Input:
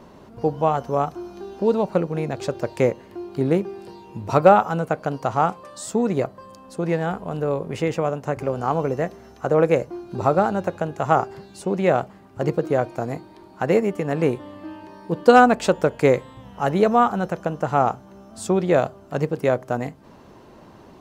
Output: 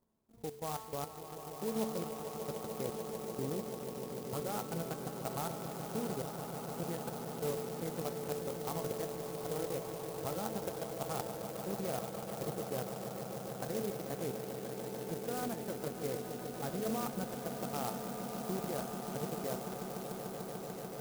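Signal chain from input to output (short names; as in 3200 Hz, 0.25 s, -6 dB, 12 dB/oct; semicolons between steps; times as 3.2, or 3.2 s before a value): low shelf 120 Hz +5.5 dB; notch 610 Hz, Q 19; level quantiser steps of 22 dB; resonator 220 Hz, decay 1.2 s, mix 80%; swelling echo 0.147 s, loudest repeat 8, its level -11 dB; clock jitter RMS 0.093 ms; gain -3 dB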